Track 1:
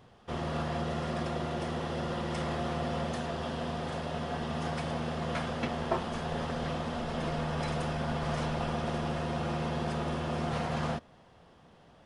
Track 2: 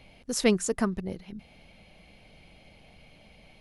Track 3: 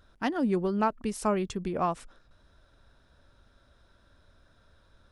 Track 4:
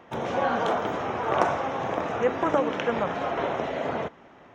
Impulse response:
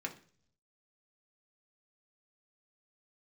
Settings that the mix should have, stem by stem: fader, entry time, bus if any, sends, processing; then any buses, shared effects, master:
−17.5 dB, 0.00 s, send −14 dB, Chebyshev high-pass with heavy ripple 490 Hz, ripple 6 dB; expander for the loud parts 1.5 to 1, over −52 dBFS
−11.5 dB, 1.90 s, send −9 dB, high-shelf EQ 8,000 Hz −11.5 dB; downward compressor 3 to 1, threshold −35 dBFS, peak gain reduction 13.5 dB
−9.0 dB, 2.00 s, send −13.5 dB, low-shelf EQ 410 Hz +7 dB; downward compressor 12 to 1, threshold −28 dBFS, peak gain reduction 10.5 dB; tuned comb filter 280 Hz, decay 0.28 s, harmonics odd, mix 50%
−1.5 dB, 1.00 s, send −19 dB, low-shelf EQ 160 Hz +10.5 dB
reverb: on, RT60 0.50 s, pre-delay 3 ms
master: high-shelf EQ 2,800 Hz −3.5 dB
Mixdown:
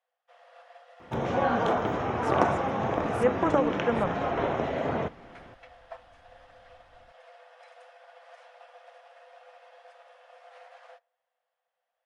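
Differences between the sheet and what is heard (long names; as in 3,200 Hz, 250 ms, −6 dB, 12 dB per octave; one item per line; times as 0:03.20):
stem 1 −17.5 dB → −9.5 dB
stem 3 −9.0 dB → −1.5 dB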